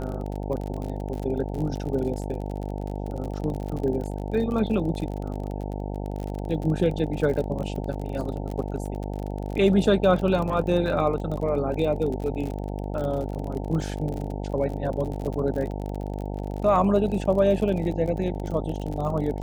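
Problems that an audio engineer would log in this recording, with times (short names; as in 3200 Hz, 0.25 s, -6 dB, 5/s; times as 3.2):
buzz 50 Hz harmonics 18 -31 dBFS
crackle 40/s -31 dBFS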